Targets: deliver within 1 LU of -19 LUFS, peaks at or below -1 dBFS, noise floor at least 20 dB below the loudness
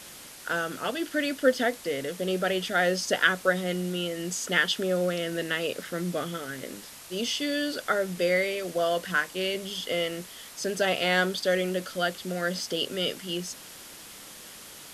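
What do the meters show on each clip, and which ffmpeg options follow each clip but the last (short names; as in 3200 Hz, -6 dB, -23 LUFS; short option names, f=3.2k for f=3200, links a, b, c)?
noise floor -46 dBFS; noise floor target -48 dBFS; loudness -28.0 LUFS; peak -6.0 dBFS; loudness target -19.0 LUFS
-> -af "afftdn=nr=6:nf=-46"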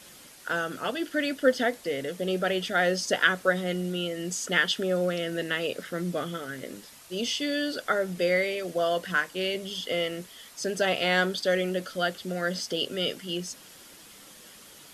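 noise floor -50 dBFS; loudness -28.0 LUFS; peak -6.5 dBFS; loudness target -19.0 LUFS
-> -af "volume=9dB,alimiter=limit=-1dB:level=0:latency=1"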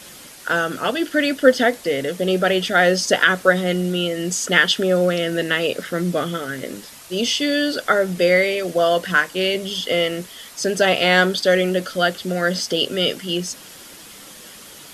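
loudness -19.0 LUFS; peak -1.0 dBFS; noise floor -41 dBFS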